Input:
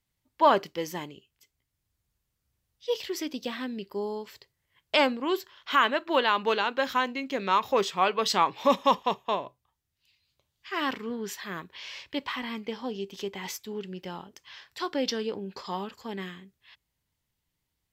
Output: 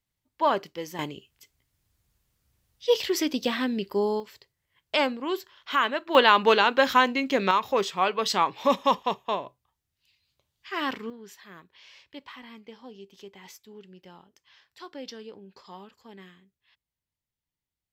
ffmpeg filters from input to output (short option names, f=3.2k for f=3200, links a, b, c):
-af "asetnsamples=n=441:p=0,asendcmd='0.99 volume volume 7dB;4.2 volume volume -1.5dB;6.15 volume volume 6.5dB;7.51 volume volume 0dB;11.1 volume volume -11dB',volume=-3dB"